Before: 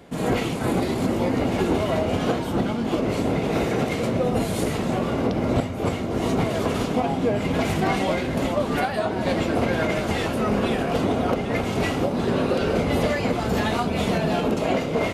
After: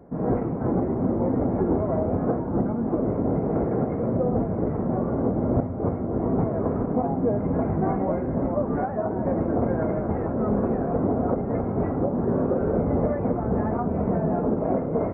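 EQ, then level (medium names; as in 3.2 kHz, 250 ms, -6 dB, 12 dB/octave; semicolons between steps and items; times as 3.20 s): Gaussian low-pass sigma 7.6 samples; 0.0 dB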